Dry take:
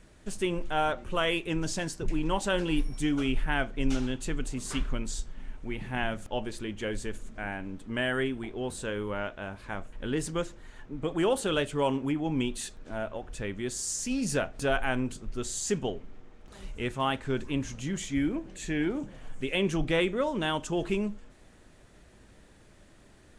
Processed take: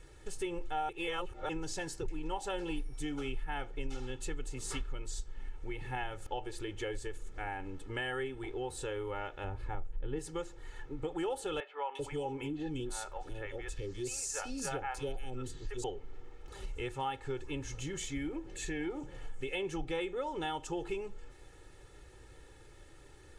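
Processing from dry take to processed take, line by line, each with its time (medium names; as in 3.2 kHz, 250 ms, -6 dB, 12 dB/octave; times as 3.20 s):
0.89–1.49 s: reverse
9.44–10.19 s: tilt EQ -2.5 dB/octave
11.60–15.84 s: three bands offset in time mids, highs, lows 350/390 ms, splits 580/2800 Hz
whole clip: comb 2.3 ms, depth 89%; dynamic bell 770 Hz, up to +7 dB, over -47 dBFS, Q 3.8; compression 3:1, threshold -34 dBFS; trim -2.5 dB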